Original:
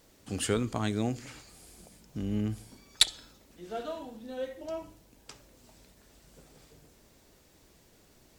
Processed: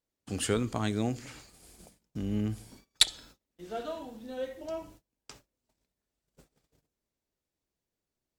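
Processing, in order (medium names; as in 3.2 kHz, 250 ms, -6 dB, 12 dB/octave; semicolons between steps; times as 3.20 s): gate -53 dBFS, range -28 dB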